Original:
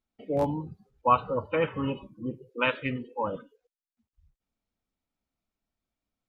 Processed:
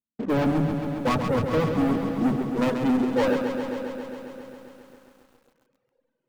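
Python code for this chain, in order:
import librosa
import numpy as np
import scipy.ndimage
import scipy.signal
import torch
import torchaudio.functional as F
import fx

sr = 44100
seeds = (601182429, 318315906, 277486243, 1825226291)

p1 = fx.filter_sweep_bandpass(x, sr, from_hz=210.0, to_hz=1400.0, start_s=2.63, end_s=4.32, q=1.3)
p2 = fx.leveller(p1, sr, passes=5)
p3 = fx.low_shelf(p2, sr, hz=440.0, db=2.0)
p4 = p3 + fx.echo_diffused(p3, sr, ms=469, feedback_pct=41, wet_db=-11.5, dry=0)
p5 = fx.dereverb_blind(p4, sr, rt60_s=1.7)
p6 = fx.echo_crushed(p5, sr, ms=135, feedback_pct=80, bits=10, wet_db=-7)
y = F.gain(torch.from_numpy(p6), 2.0).numpy()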